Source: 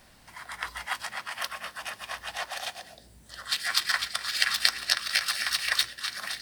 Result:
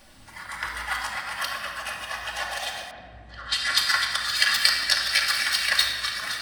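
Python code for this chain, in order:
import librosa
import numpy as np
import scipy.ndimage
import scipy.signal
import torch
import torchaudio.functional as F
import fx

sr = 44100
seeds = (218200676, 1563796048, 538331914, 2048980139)

y = fx.spec_quant(x, sr, step_db=15)
y = fx.room_shoebox(y, sr, seeds[0], volume_m3=2600.0, walls='mixed', distance_m=2.4)
y = fx.env_lowpass(y, sr, base_hz=2100.0, full_db=-21.5, at=(2.91, 4.1))
y = y * librosa.db_to_amplitude(2.0)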